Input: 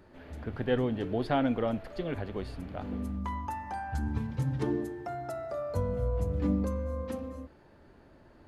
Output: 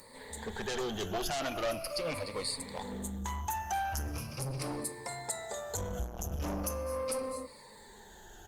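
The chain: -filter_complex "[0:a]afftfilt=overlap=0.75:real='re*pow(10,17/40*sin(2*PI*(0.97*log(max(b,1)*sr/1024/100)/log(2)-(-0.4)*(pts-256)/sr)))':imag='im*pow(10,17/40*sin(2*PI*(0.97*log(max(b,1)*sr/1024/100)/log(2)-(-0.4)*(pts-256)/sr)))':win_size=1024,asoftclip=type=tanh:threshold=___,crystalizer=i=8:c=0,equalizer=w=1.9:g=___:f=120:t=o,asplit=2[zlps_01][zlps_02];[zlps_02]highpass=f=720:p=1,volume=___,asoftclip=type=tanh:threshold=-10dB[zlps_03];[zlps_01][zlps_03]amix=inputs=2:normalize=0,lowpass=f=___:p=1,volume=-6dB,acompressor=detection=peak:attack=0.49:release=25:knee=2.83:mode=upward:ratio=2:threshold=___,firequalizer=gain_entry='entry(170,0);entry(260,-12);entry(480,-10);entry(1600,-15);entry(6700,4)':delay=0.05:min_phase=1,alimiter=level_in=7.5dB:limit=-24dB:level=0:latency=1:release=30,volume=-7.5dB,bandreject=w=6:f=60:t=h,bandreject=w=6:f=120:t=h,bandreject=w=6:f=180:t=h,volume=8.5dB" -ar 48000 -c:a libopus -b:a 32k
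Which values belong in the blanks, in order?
-28.5dB, -11, 11dB, 1100, -46dB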